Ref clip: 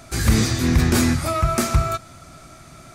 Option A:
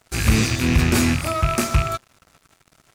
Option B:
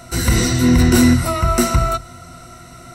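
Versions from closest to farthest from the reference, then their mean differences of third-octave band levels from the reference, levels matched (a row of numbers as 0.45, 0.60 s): B, A; 2.0, 4.5 dB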